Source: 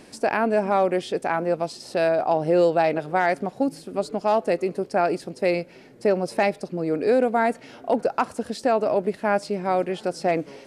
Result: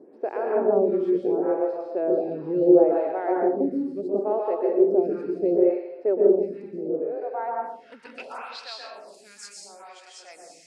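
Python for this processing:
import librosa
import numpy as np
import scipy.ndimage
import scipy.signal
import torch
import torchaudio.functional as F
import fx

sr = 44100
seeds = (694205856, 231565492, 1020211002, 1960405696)

y = fx.level_steps(x, sr, step_db=15, at=(6.15, 7.92))
y = fx.filter_sweep_bandpass(y, sr, from_hz=380.0, to_hz=7000.0, start_s=6.77, end_s=8.96, q=2.8)
y = fx.rev_plate(y, sr, seeds[0], rt60_s=1.0, hf_ratio=0.95, predelay_ms=110, drr_db=-2.5)
y = fx.stagger_phaser(y, sr, hz=0.72)
y = y * 10.0 ** (4.5 / 20.0)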